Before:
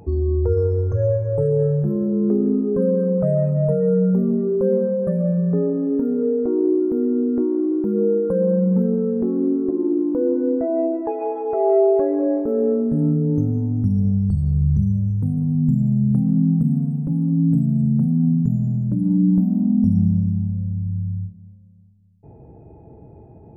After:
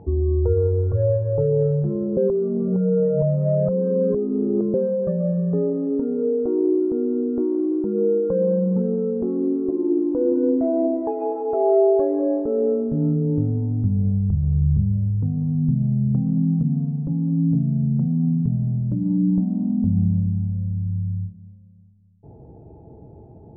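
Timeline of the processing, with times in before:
2.17–4.74 s: reverse
9.82–10.73 s: reverb throw, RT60 2.7 s, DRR 5 dB
whole clip: low-pass 1.1 kHz 12 dB/octave; dynamic bell 220 Hz, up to -5 dB, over -31 dBFS, Q 2.1

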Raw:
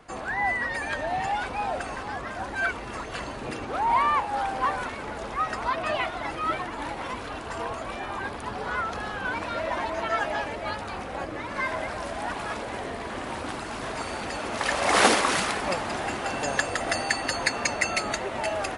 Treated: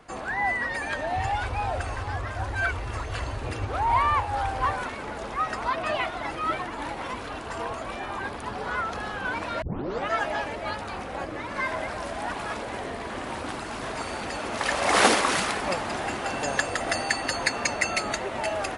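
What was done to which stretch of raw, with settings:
1.16–4.73 s: resonant low shelf 130 Hz +9 dB, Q 3
9.62 s: tape start 0.48 s

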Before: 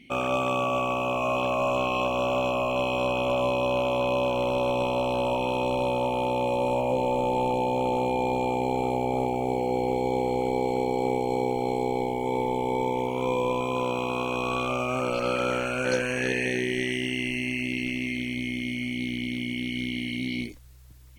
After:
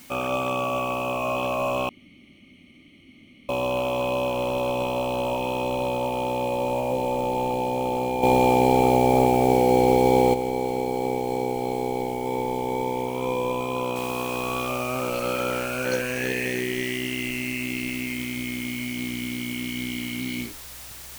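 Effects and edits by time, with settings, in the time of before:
1.89–3.49 s: room tone
8.23–10.34 s: gain +8 dB
13.96 s: noise floor step -49 dB -41 dB

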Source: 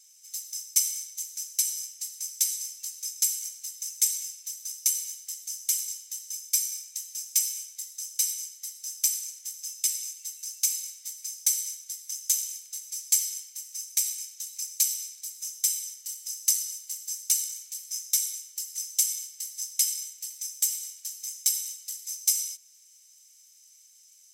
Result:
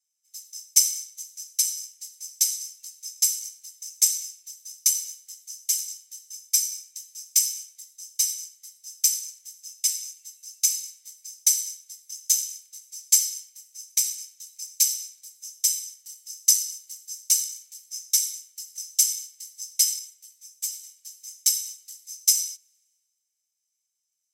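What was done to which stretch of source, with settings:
19.99–20.84 s: three-phase chorus
whole clip: dynamic bell 5.4 kHz, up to +5 dB, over -41 dBFS, Q 1.8; three bands expanded up and down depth 70%; trim -2 dB

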